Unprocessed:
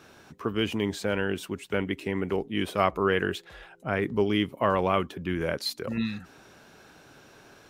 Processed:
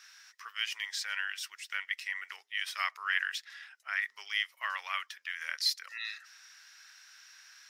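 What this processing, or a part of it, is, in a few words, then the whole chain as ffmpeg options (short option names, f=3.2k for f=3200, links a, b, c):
headphones lying on a table: -af "highpass=f=1.4k:w=0.5412,highpass=f=1.4k:w=1.3066,equalizer=f=1.9k:t=o:w=0.25:g=9,equalizer=f=5.3k:t=o:w=0.5:g=12,volume=-2.5dB"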